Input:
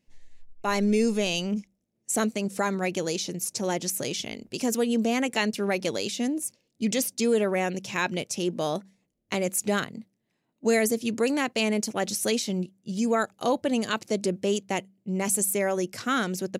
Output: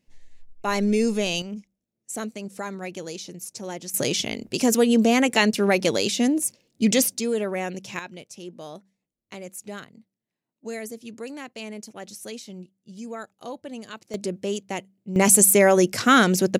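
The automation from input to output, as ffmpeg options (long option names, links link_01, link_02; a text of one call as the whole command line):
ffmpeg -i in.wav -af "asetnsamples=nb_out_samples=441:pad=0,asendcmd='1.42 volume volume -6dB;3.94 volume volume 6.5dB;7.19 volume volume -2dB;7.99 volume volume -11dB;14.14 volume volume -2dB;15.16 volume volume 10dB',volume=1.5dB" out.wav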